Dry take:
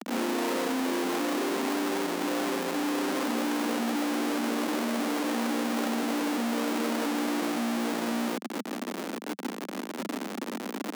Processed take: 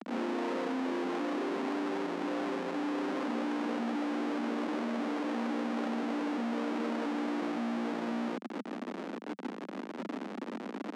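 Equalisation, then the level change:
high-frequency loss of the air 71 metres
high-shelf EQ 3,700 Hz −10 dB
−4.0 dB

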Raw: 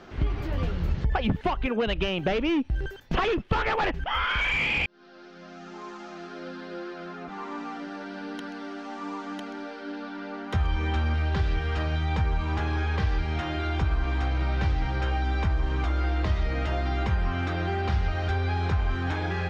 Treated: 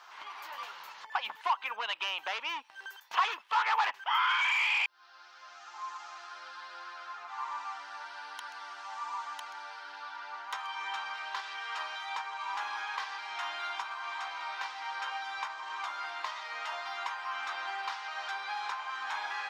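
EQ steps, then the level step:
high-pass with resonance 970 Hz, resonance Q 4.9
spectral tilt +4 dB per octave
−9.0 dB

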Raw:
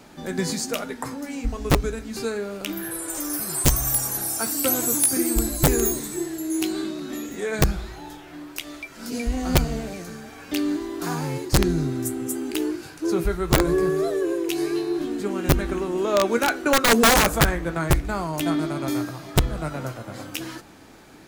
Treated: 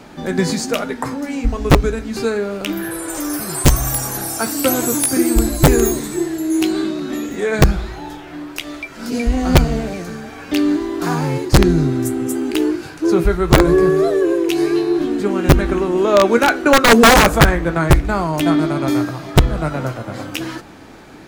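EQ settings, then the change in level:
high-shelf EQ 5,500 Hz −9 dB
+8.5 dB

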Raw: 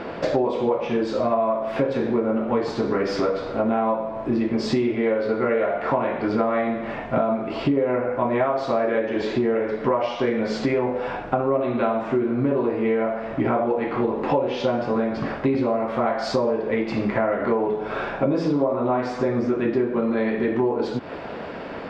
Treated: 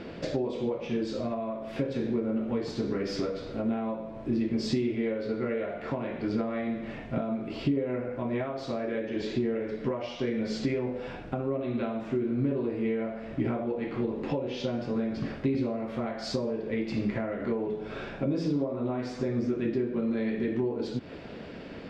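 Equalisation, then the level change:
parametric band 960 Hz −14 dB 2.1 octaves
−2.5 dB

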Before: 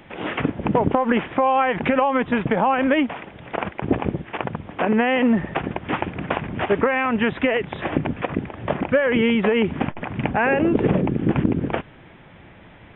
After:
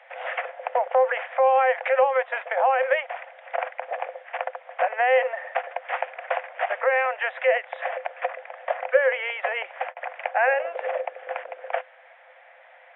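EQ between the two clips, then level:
Chebyshev high-pass with heavy ripple 500 Hz, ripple 9 dB
low-pass filter 1,200 Hz 6 dB per octave
+6.0 dB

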